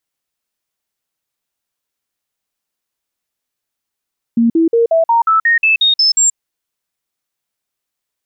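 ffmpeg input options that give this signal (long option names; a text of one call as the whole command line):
ffmpeg -f lavfi -i "aevalsrc='0.398*clip(min(mod(t,0.18),0.13-mod(t,0.18))/0.005,0,1)*sin(2*PI*232*pow(2,floor(t/0.18)/2)*mod(t,0.18))':duration=1.98:sample_rate=44100" out.wav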